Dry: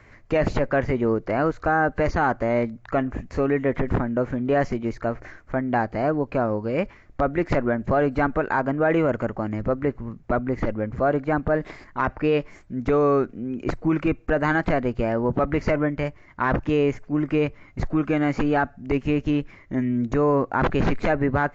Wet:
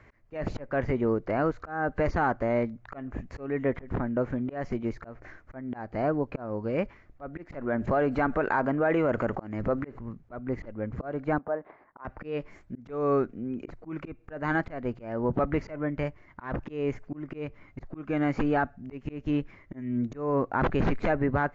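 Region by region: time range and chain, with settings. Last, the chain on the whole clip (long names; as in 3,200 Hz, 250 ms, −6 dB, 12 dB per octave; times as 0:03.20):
0:07.61–0:09.99: low-shelf EQ 220 Hz −5.5 dB + envelope flattener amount 50%
0:11.38–0:12.05: resonant band-pass 830 Hz, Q 1.2 + high-frequency loss of the air 340 metres
whole clip: high-shelf EQ 4,300 Hz −8.5 dB; volume swells 254 ms; level −4 dB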